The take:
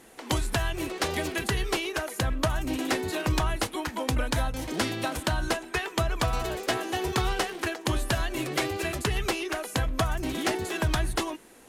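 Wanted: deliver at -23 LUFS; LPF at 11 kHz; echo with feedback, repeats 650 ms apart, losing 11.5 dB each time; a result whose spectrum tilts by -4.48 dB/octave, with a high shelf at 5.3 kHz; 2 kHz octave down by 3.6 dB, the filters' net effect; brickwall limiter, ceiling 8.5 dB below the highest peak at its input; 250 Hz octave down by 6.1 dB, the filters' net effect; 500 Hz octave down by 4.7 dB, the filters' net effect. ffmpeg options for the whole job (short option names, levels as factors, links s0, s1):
-af "lowpass=11000,equalizer=f=250:t=o:g=-7,equalizer=f=500:t=o:g=-4,equalizer=f=2000:t=o:g=-5,highshelf=f=5300:g=4,alimiter=limit=0.0794:level=0:latency=1,aecho=1:1:650|1300|1950:0.266|0.0718|0.0194,volume=3.35"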